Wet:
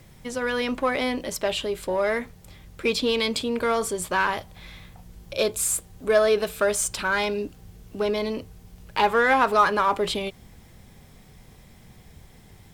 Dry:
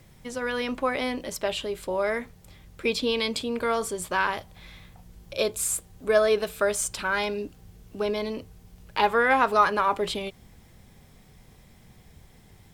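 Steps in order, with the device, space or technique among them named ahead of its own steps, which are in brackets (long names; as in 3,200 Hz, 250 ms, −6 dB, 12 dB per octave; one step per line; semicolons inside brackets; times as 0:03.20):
parallel distortion (in parallel at −6.5 dB: hard clipping −25.5 dBFS, distortion −6 dB)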